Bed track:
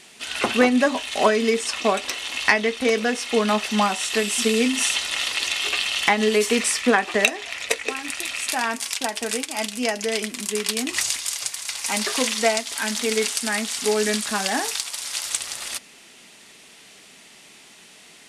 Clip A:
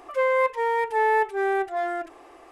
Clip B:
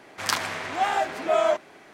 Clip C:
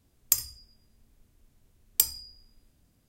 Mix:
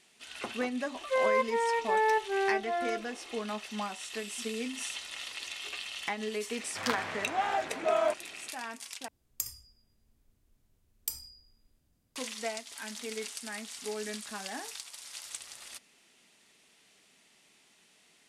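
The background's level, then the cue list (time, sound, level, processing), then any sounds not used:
bed track -16 dB
0.95 s: add A -5.5 dB
6.57 s: add B -6 dB + treble shelf 5.1 kHz -8 dB
9.08 s: replace with C -7 dB + peak limiter -7 dBFS

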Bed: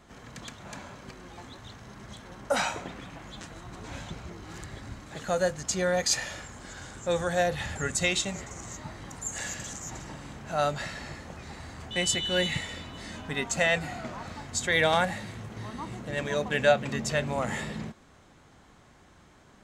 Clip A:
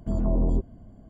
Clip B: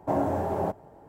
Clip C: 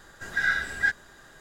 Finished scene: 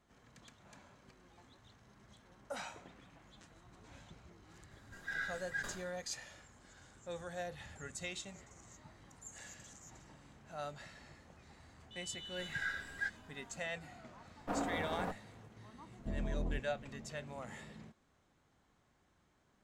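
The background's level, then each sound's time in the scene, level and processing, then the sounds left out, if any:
bed -17 dB
4.71 s: add C -16 dB + decay stretcher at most 81 dB/s
12.18 s: add C -14.5 dB
14.40 s: add B -10 dB + comb filter that takes the minimum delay 4.1 ms
15.99 s: add A -11.5 dB + peak limiter -19 dBFS

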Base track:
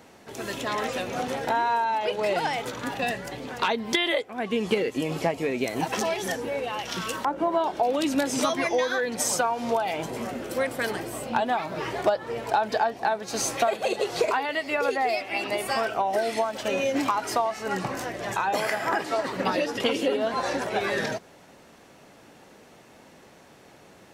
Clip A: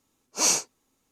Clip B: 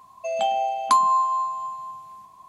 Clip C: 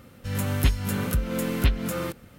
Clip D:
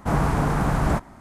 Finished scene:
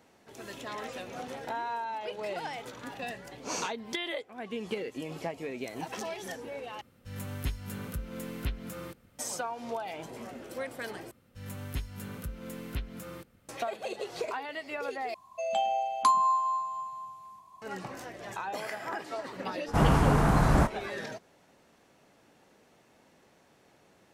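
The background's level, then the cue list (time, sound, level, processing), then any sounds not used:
base track -10.5 dB
3.08 s: add A -5 dB + low-pass 1.6 kHz 6 dB/octave
6.81 s: replace with C -12 dB
11.11 s: replace with C -14 dB
15.14 s: replace with B -5.5 dB
19.68 s: add D -1.5 dB

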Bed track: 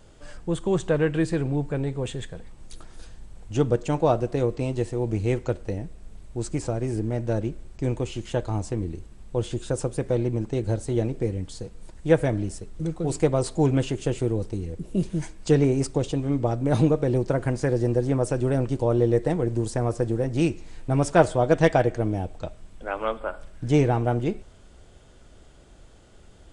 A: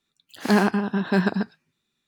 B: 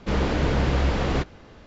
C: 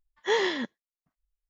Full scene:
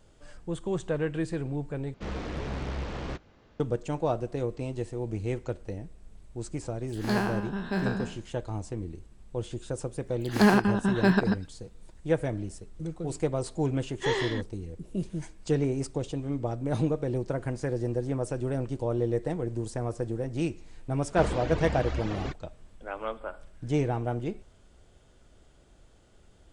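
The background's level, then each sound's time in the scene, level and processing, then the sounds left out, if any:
bed track -7 dB
1.94 s: replace with B -11.5 dB + loudspeaker Doppler distortion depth 0.79 ms
6.59 s: add A -10 dB + spectral sustain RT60 0.53 s
9.91 s: add A -1.5 dB
13.76 s: add C -3.5 dB
21.10 s: add B -7 dB + reverb removal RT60 1.5 s

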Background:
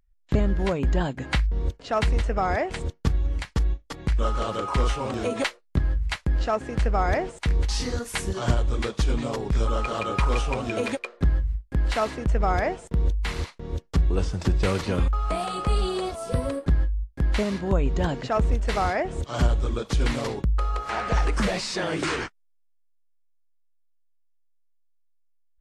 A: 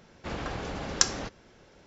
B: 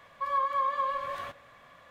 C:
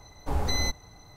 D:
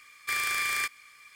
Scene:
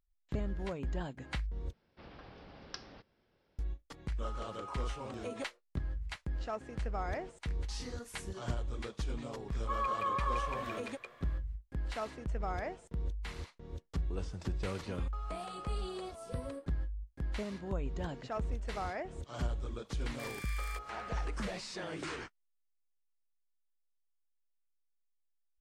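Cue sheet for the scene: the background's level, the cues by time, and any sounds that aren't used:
background -14 dB
1.73 s: replace with A -17.5 dB + Chebyshev low-pass 5.2 kHz, order 5
9.48 s: add B -4.5 dB + peak limiter -23 dBFS
19.91 s: add D -17 dB
not used: C

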